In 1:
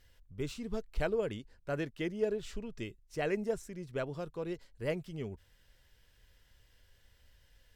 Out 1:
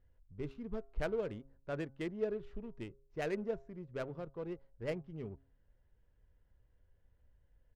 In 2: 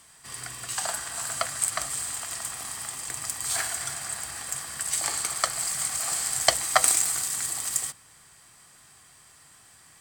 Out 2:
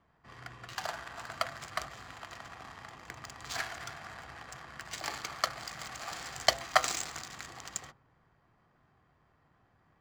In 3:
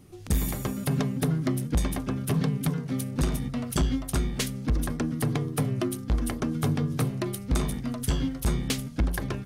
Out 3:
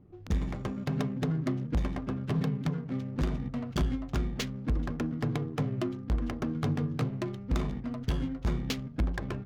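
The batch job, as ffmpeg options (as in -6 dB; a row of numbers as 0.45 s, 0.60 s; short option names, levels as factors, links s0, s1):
-af "aresample=16000,aresample=44100,bandreject=f=135.7:t=h:w=4,bandreject=f=271.4:t=h:w=4,bandreject=f=407.1:t=h:w=4,bandreject=f=542.8:t=h:w=4,bandreject=f=678.5:t=h:w=4,bandreject=f=814.2:t=h:w=4,bandreject=f=949.9:t=h:w=4,bandreject=f=1085.6:t=h:w=4,bandreject=f=1221.3:t=h:w=4,bandreject=f=1357:t=h:w=4,bandreject=f=1492.7:t=h:w=4,adynamicsmooth=sensitivity=7.5:basefreq=950,volume=0.668"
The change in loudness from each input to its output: -4.0 LU, -10.5 LU, -4.0 LU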